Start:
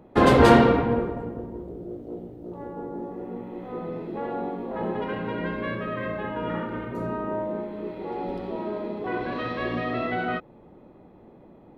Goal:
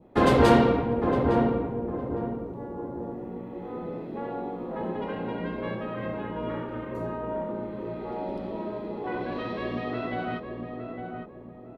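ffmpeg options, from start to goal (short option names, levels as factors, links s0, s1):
-filter_complex "[0:a]adynamicequalizer=threshold=0.00794:dfrequency=1600:dqfactor=1.3:tfrequency=1600:tqfactor=1.3:attack=5:release=100:ratio=0.375:range=2.5:mode=cutabove:tftype=bell,asplit=2[s0][s1];[s1]adelay=859,lowpass=f=1000:p=1,volume=0.631,asplit=2[s2][s3];[s3]adelay=859,lowpass=f=1000:p=1,volume=0.38,asplit=2[s4][s5];[s5]adelay=859,lowpass=f=1000:p=1,volume=0.38,asplit=2[s6][s7];[s7]adelay=859,lowpass=f=1000:p=1,volume=0.38,asplit=2[s8][s9];[s9]adelay=859,lowpass=f=1000:p=1,volume=0.38[s10];[s2][s4][s6][s8][s10]amix=inputs=5:normalize=0[s11];[s0][s11]amix=inputs=2:normalize=0,volume=0.708"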